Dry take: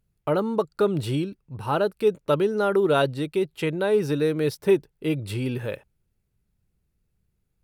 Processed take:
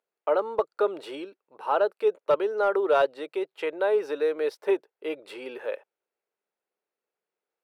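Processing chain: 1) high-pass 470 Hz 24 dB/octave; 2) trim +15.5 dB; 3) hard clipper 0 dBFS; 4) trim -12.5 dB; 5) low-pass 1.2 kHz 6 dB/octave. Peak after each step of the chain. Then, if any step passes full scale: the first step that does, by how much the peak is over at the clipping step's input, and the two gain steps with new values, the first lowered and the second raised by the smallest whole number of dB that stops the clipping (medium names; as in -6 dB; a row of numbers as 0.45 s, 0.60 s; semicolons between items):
-11.0 dBFS, +4.5 dBFS, 0.0 dBFS, -12.5 dBFS, -12.5 dBFS; step 2, 4.5 dB; step 2 +10.5 dB, step 4 -7.5 dB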